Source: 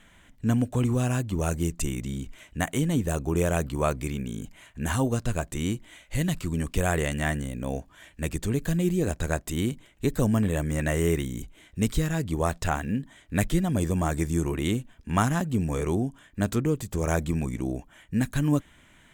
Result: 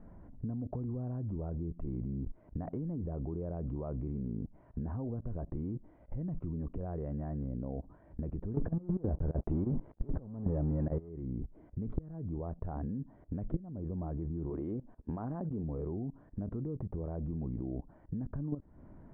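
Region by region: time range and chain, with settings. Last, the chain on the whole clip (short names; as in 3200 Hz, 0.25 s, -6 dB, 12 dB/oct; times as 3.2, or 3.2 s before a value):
8.54–11.09 negative-ratio compressor -36 dBFS + sample leveller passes 5
14.5–15.64 LPF 8600 Hz + tone controls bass -9 dB, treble +6 dB
whole clip: level quantiser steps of 20 dB; Bessel low-pass 580 Hz, order 4; compressor 4:1, threshold -46 dBFS; gain +11 dB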